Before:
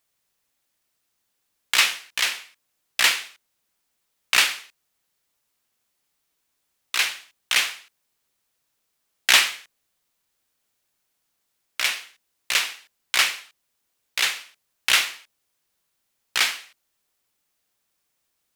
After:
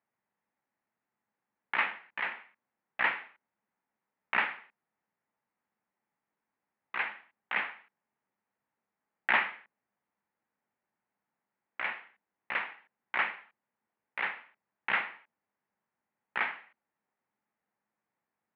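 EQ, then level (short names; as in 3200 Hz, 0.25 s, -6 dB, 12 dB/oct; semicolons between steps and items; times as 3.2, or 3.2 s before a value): air absorption 270 m; speaker cabinet 120–2200 Hz, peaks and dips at 210 Hz +8 dB, 860 Hz +7 dB, 1900 Hz +3 dB; -4.5 dB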